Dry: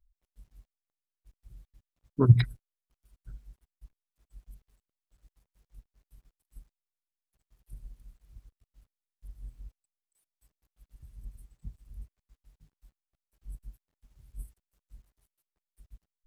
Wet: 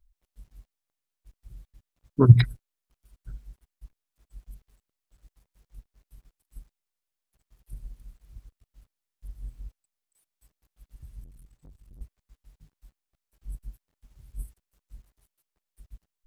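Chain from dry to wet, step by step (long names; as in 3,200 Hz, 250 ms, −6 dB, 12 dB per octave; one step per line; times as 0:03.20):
0:11.24–0:12.01: tube saturation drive 52 dB, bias 0.6
level +5 dB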